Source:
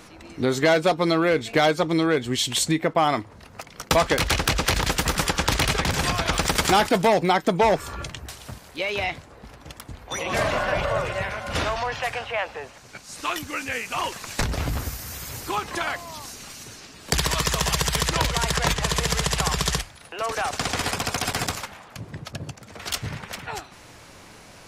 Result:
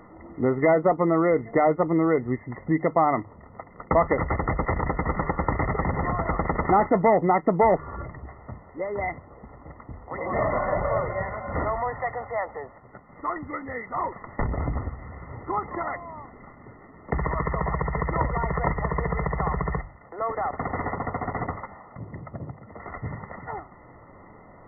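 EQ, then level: Butterworth band-stop 1.6 kHz, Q 3.6; brick-wall FIR low-pass 2.1 kHz; hum notches 50/100/150 Hz; 0.0 dB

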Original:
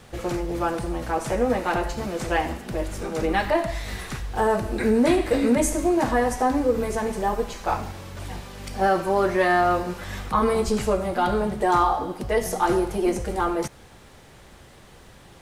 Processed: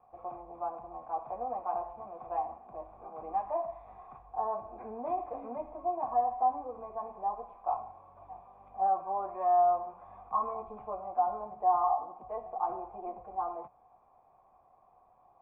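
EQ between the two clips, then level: cascade formant filter a; hum notches 60/120/180 Hz; 0.0 dB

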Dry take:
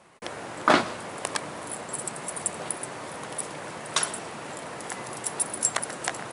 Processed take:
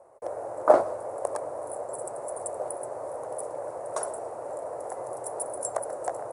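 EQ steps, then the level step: FFT filter 120 Hz 0 dB, 180 Hz -16 dB, 570 Hz +15 dB, 3.2 kHz -24 dB, 9.3 kHz -2 dB; -5.5 dB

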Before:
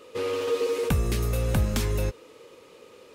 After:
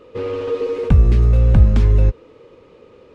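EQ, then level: tape spacing loss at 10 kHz 24 dB; bass shelf 74 Hz +9 dB; bass shelf 240 Hz +6 dB; +4.0 dB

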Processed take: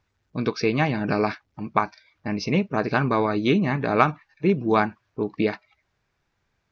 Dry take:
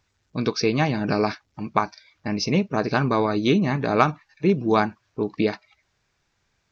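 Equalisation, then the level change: dynamic bell 2.3 kHz, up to +5 dB, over -37 dBFS, Q 0.79; treble shelf 4.1 kHz -11.5 dB; -1.0 dB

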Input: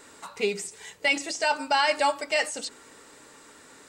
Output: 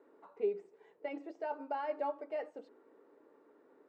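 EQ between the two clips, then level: ladder band-pass 440 Hz, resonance 40%; +1.5 dB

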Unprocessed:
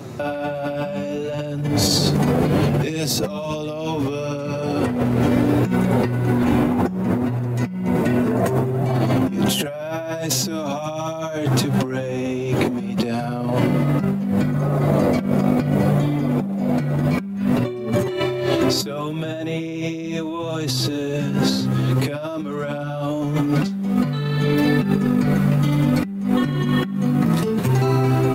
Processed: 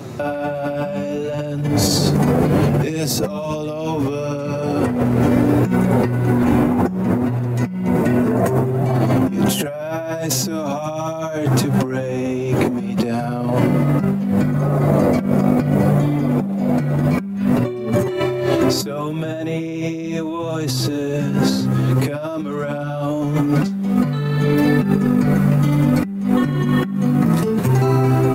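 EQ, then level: dynamic bell 3.5 kHz, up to -6 dB, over -43 dBFS, Q 1.3; +2.5 dB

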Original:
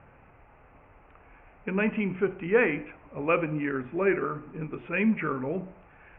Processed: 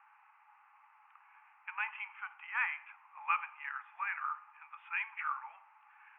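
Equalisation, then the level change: rippled Chebyshev high-pass 820 Hz, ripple 3 dB; low-pass 2.1 kHz 6 dB/octave; distance through air 71 m; 0.0 dB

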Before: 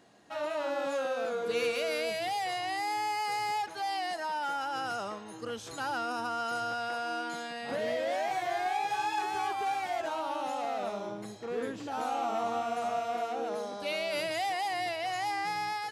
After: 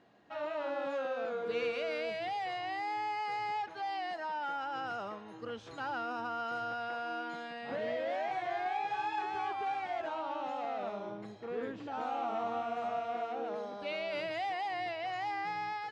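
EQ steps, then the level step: low-pass 3.2 kHz 12 dB/octave; -3.5 dB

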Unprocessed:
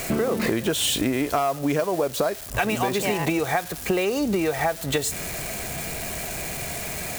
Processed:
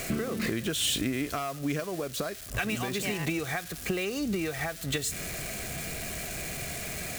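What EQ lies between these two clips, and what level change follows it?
dynamic bell 580 Hz, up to -8 dB, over -37 dBFS, Q 0.82; peaking EQ 910 Hz -9 dB 0.31 oct; treble shelf 11 kHz -4 dB; -3.5 dB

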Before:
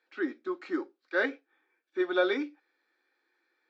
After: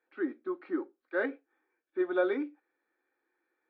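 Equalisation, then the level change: distance through air 320 m; treble shelf 2.1 kHz -8.5 dB; 0.0 dB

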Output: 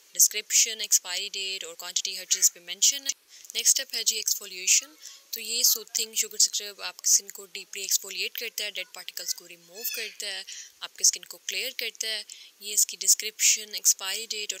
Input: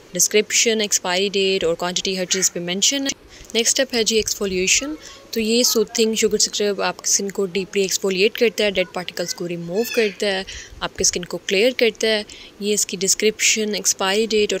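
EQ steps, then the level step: differentiator; -1.5 dB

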